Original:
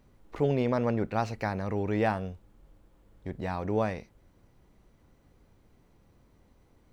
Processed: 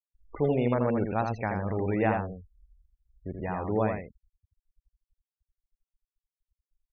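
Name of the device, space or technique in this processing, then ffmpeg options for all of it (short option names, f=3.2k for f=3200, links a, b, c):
exciter from parts: -filter_complex "[0:a]asplit=2[a][b];[b]highpass=f=3.9k:p=1,asoftclip=type=tanh:threshold=-38.5dB,volume=-9dB[c];[a][c]amix=inputs=2:normalize=0,afftfilt=real='re*gte(hypot(re,im),0.0158)':imag='im*gte(hypot(re,im),0.0158)':win_size=1024:overlap=0.75,aecho=1:1:82:0.562"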